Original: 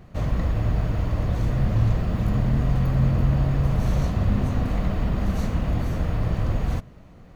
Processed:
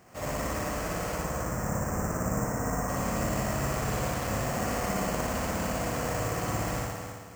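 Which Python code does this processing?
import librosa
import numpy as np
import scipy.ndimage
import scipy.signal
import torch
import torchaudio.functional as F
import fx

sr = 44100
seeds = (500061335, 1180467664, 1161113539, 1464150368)

y = fx.lowpass(x, sr, hz=1800.0, slope=24, at=(1.15, 2.89))
y = fx.echo_feedback(y, sr, ms=275, feedback_pct=28, wet_db=-8)
y = fx.rev_spring(y, sr, rt60_s=1.2, pass_ms=(57,), chirp_ms=50, drr_db=-4.0)
y = np.repeat(scipy.signal.resample_poly(y, 1, 6), 6)[:len(y)]
y = fx.highpass(y, sr, hz=770.0, slope=6)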